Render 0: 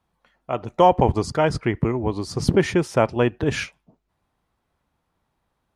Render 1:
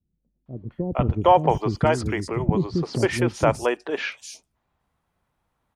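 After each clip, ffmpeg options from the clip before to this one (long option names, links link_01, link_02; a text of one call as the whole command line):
ffmpeg -i in.wav -filter_complex "[0:a]acrossover=split=330|4600[link_01][link_02][link_03];[link_02]adelay=460[link_04];[link_03]adelay=710[link_05];[link_01][link_04][link_05]amix=inputs=3:normalize=0" out.wav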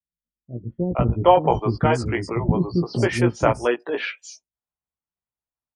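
ffmpeg -i in.wav -filter_complex "[0:a]afftdn=noise_reduction=27:noise_floor=-41,asplit=2[link_01][link_02];[link_02]adelay=17,volume=-4dB[link_03];[link_01][link_03]amix=inputs=2:normalize=0" out.wav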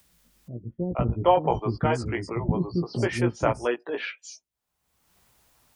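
ffmpeg -i in.wav -af "acompressor=mode=upward:threshold=-30dB:ratio=2.5,volume=-5dB" out.wav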